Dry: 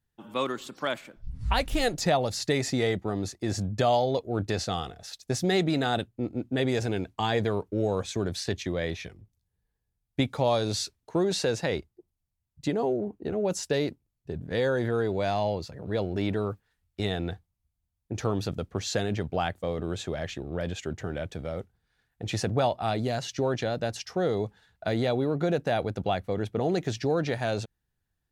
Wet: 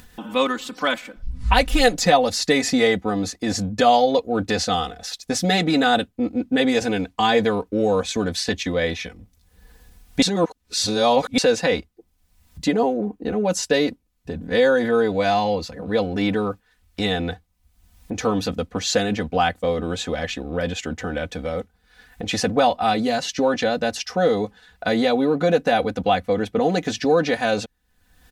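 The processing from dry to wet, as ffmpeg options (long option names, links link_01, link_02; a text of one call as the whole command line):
ffmpeg -i in.wav -filter_complex "[0:a]asplit=3[link_01][link_02][link_03];[link_01]atrim=end=10.222[link_04];[link_02]atrim=start=10.218:end=11.382,asetpts=PTS-STARTPTS,areverse[link_05];[link_03]atrim=start=11.378[link_06];[link_04][link_05]acrossfade=duration=0.004:curve1=hsin:curve2=hsin[link_07];[link_07][link_06]acrossfade=duration=0.004:curve1=hsin:curve2=hsin,equalizer=frequency=2300:width=0.32:gain=3,aecho=1:1:4:0.86,acompressor=mode=upward:threshold=-32dB:ratio=2.5,volume=4.5dB" out.wav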